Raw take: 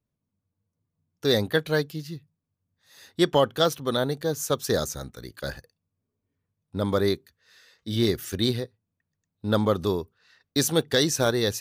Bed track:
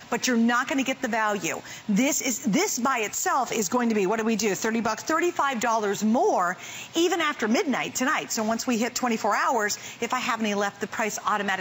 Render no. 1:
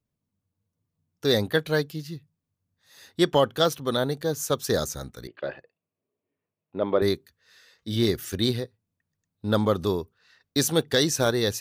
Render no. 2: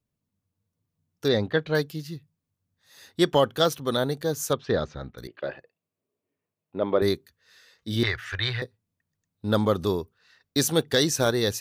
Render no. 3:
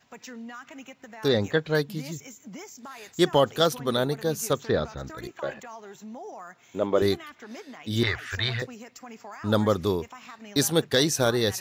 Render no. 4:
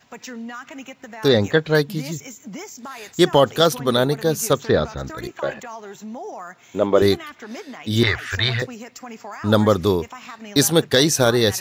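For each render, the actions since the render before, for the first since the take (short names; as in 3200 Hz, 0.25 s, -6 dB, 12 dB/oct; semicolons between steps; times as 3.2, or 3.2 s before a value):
5.27–7.02 speaker cabinet 220–2800 Hz, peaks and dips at 230 Hz -5 dB, 370 Hz +5 dB, 630 Hz +6 dB, 1500 Hz -4 dB, 2700 Hz +6 dB
1.28–1.75 air absorption 170 m; 4.53–5.18 LPF 3400 Hz 24 dB/oct; 8.03–8.62 EQ curve 120 Hz 0 dB, 210 Hz -25 dB, 810 Hz +4 dB, 1800 Hz +14 dB, 13000 Hz -24 dB
add bed track -18.5 dB
gain +7 dB; limiter -3 dBFS, peak gain reduction 2 dB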